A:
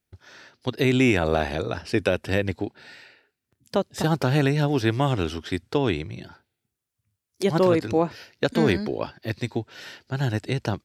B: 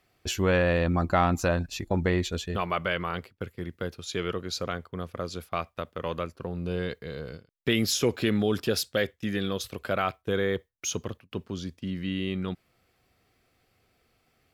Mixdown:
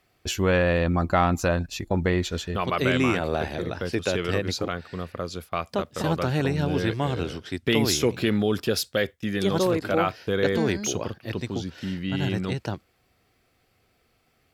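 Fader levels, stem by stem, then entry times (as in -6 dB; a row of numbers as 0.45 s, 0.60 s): -4.0 dB, +2.0 dB; 2.00 s, 0.00 s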